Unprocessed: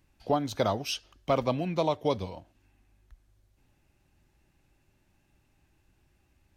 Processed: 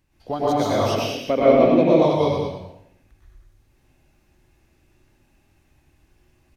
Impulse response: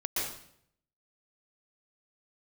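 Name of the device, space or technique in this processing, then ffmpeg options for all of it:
bathroom: -filter_complex "[1:a]atrim=start_sample=2205[s0];[0:a][s0]afir=irnorm=-1:irlink=0,asettb=1/sr,asplit=3[s1][s2][s3];[s1]atrim=end=0.954[s4];[s2]atrim=start=0.95:end=2.02,asetpts=PTS-STARTPTS,afade=t=in:d=0.004:c=qsin,afade=t=out:st=1.066:d=0.004:c=qsin,equalizer=f=125:t=o:w=1:g=-7,equalizer=f=250:t=o:w=1:g=8,equalizer=f=500:t=o:w=1:g=8,equalizer=f=1000:t=o:w=1:g=-6,equalizer=f=2000:t=o:w=1:g=6,equalizer=f=4000:t=o:w=1:g=-4,equalizer=f=8000:t=o:w=1:g=-10[s5];[s3]atrim=start=2.016[s6];[s4][s5]acrossfade=d=0.004:c1=hsin:c2=qsin[s7];[s7][s6]acrossfade=d=0.004:c1=qsin:c2=hsin,aecho=1:1:99.13|192.4:0.562|0.355"

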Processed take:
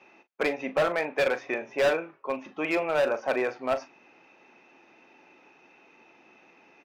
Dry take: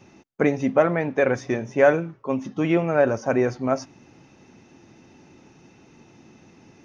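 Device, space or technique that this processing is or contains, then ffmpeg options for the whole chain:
megaphone: -filter_complex "[0:a]highpass=540,lowpass=2900,equalizer=f=2500:t=o:w=0.2:g=8.5,asoftclip=type=hard:threshold=0.106,asplit=2[s0][s1];[s1]adelay=39,volume=0.224[s2];[s0][s2]amix=inputs=2:normalize=0"

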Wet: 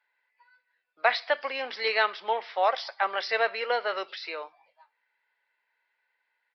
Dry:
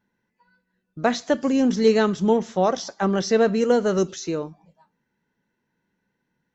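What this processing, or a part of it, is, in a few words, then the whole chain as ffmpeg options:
musical greeting card: -af "aresample=11025,aresample=44100,highpass=f=660:w=0.5412,highpass=f=660:w=1.3066,equalizer=f=2200:t=o:w=0.56:g=9.5"

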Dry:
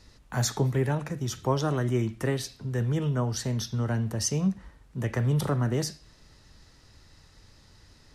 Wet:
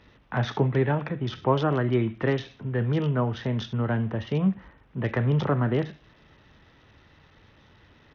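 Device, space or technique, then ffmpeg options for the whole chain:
Bluetooth headset: -af "highpass=f=140:p=1,aresample=8000,aresample=44100,volume=1.68" -ar 48000 -c:a sbc -b:a 64k

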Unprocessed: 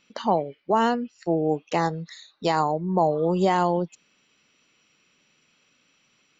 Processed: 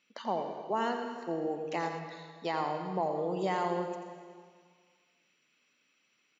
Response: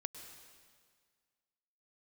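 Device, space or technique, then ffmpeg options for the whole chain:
PA in a hall: -filter_complex "[0:a]highpass=190,equalizer=f=2100:t=o:w=0.8:g=4.5,aecho=1:1:86:0.355[s0];[1:a]atrim=start_sample=2205[s1];[s0][s1]afir=irnorm=-1:irlink=0,asettb=1/sr,asplit=3[s2][s3][s4];[s2]atrim=end=1.994[s5];[s3]atrim=start=1.99:end=3.03,asetpts=PTS-STARTPTS,afade=t=in:d=0.004:c=qsin,afade=t=out:st=1.036:d=0.004:c=qsin,lowpass=5000[s6];[s4]atrim=start=3.026[s7];[s5][s6]acrossfade=d=0.004:c1=hsin:c2=qsin[s8];[s8][s7]acrossfade=d=0.004:c1=qsin:c2=hsin,volume=0.398"

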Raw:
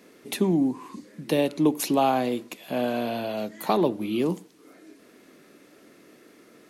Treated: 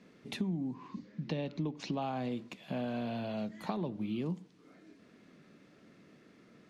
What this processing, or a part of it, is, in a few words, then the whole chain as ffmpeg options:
jukebox: -filter_complex "[0:a]lowpass=5200,lowshelf=f=240:t=q:w=1.5:g=8,acompressor=threshold=0.0562:ratio=5,asettb=1/sr,asplit=3[s0][s1][s2];[s0]atrim=end=0.744[s3];[s1]atrim=start=0.74:end=2.02,asetpts=PTS-STARTPTS,afade=t=in:d=0.004:c=qsin,afade=t=out:st=1.276:d=0.004:c=qsin,lowpass=f=6200:w=0.5412,lowpass=f=6200:w=1.3066[s4];[s2]atrim=start=2.016[s5];[s3][s4]acrossfade=d=0.004:c1=hsin:c2=qsin[s6];[s6][s5]acrossfade=d=0.004:c1=qsin:c2=hsin,volume=0.422"

